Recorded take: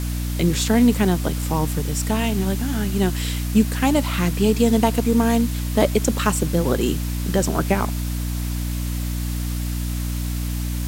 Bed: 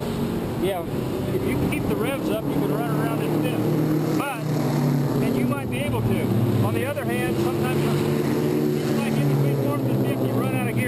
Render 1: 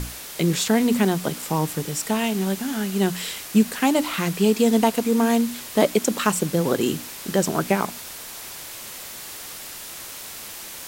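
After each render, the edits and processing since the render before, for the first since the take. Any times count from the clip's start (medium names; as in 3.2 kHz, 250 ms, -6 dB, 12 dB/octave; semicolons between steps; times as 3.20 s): hum notches 60/120/180/240/300 Hz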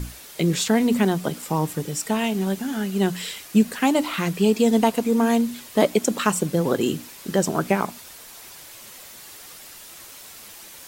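noise reduction 7 dB, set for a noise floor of -37 dBFS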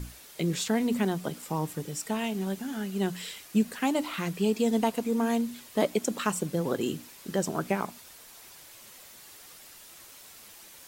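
trim -7.5 dB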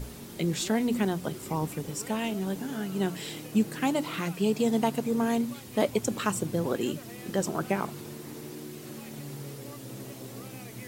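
add bed -20 dB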